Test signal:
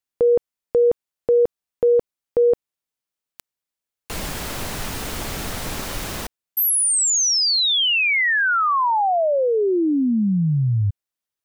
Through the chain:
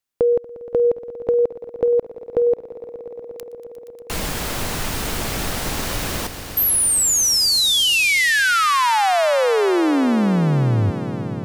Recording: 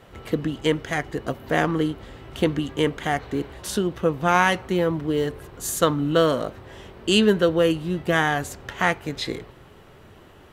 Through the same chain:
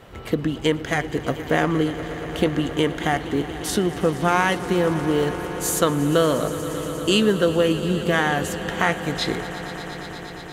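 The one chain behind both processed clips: compressor 2:1, threshold -21 dBFS; on a send: swelling echo 0.118 s, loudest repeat 5, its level -17 dB; on the sum: gain +3.5 dB

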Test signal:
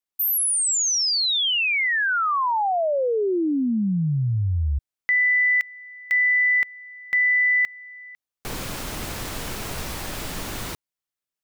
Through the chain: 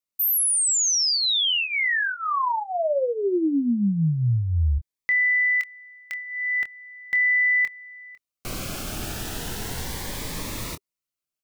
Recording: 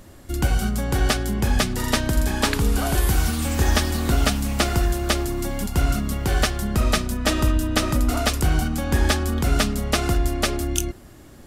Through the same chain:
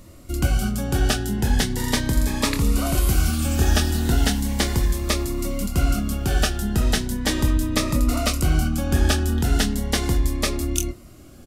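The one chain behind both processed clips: doubler 25 ms -9.5 dB; cascading phaser rising 0.37 Hz

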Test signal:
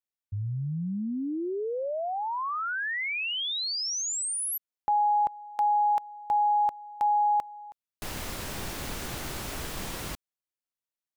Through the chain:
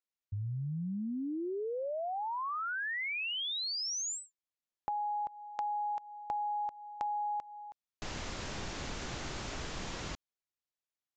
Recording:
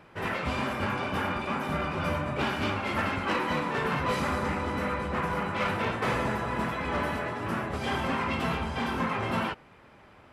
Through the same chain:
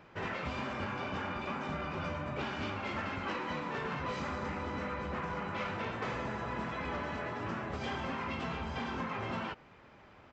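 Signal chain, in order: compressor, threshold -31 dBFS; downsampling 16000 Hz; gain -3 dB

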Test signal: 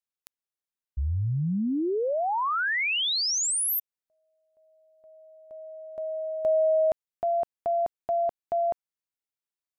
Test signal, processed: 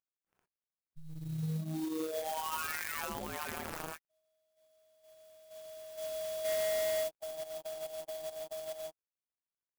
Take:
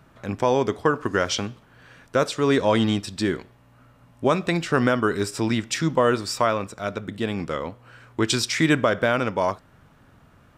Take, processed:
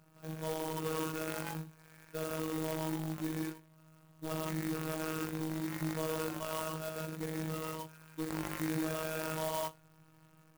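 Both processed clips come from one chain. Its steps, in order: non-linear reverb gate 0.19 s rising, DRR -0.5 dB; limiter -12.5 dBFS; hard clip -22 dBFS; robotiser 158 Hz; sample-rate reducer 4000 Hz, jitter 0%; harmonic-percussive split percussive -13 dB; clock jitter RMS 0.054 ms; gain -8.5 dB

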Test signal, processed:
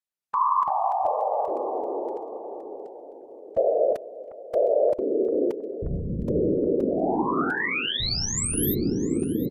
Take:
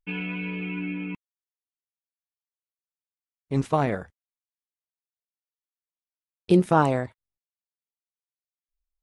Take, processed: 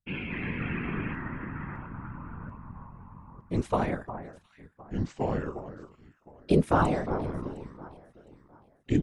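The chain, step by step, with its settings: echoes that change speed 0.224 s, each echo -5 st, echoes 3; echo with dull and thin repeats by turns 0.355 s, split 1800 Hz, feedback 52%, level -12 dB; whisperiser; downsampling 32000 Hz; gain -4 dB

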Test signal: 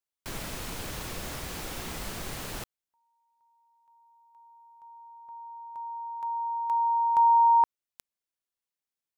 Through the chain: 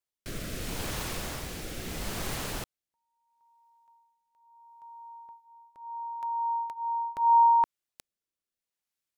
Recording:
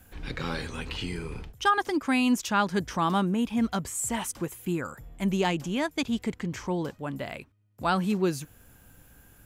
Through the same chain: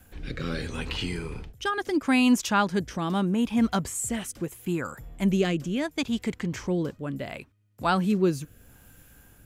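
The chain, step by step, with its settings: rotary speaker horn 0.75 Hz; gain +3.5 dB

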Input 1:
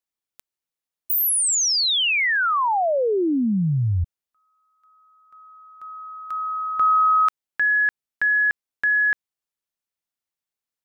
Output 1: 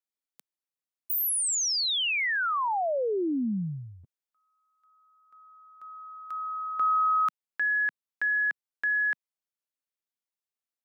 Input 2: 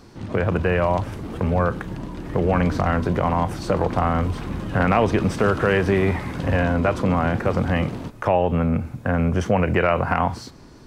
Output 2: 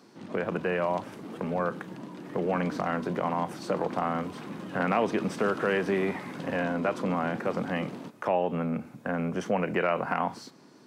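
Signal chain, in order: HPF 170 Hz 24 dB/oct; gain -7 dB

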